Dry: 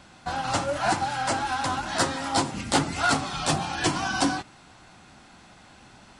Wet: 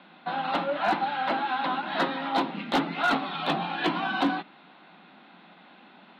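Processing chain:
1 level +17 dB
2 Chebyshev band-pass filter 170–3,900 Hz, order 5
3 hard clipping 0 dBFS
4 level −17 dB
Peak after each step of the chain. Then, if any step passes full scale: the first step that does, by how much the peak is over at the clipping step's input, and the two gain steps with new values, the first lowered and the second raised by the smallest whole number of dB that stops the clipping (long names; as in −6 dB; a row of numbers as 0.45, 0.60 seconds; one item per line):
+5.5, +8.0, 0.0, −17.0 dBFS
step 1, 8.0 dB
step 1 +9 dB, step 4 −9 dB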